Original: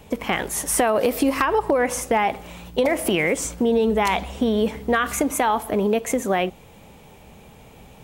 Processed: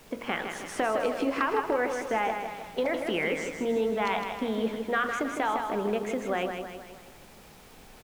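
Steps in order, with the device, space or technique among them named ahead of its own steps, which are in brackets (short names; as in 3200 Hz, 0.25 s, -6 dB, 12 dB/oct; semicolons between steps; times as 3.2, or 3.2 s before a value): horn gramophone (BPF 190–4300 Hz; bell 1400 Hz +5 dB 0.43 oct; wow and flutter 13 cents; pink noise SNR 23 dB); feedback echo 0.158 s, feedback 50%, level -6.5 dB; de-hum 47.26 Hz, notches 32; gain -8 dB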